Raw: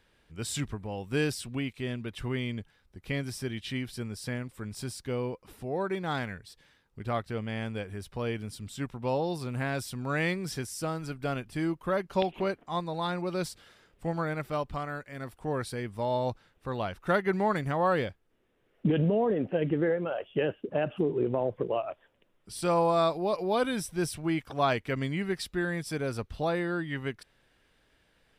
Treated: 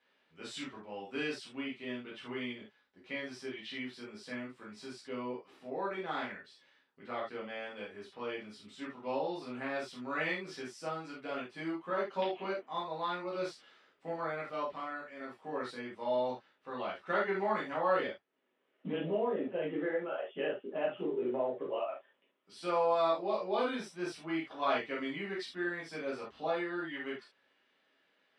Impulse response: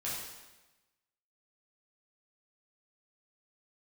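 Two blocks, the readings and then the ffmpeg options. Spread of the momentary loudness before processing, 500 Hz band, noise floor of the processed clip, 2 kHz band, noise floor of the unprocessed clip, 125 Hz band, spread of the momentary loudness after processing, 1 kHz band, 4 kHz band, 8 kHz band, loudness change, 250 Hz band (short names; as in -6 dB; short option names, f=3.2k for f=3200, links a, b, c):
11 LU, -5.0 dB, -74 dBFS, -3.5 dB, -69 dBFS, -18.5 dB, 13 LU, -4.0 dB, -5.0 dB, under -10 dB, -5.5 dB, -8.0 dB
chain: -filter_complex "[0:a]highpass=380,lowpass=4k[a];[1:a]atrim=start_sample=2205,afade=t=out:st=0.21:d=0.01,atrim=end_sample=9702,asetrate=79380,aresample=44100[b];[a][b]afir=irnorm=-1:irlink=0"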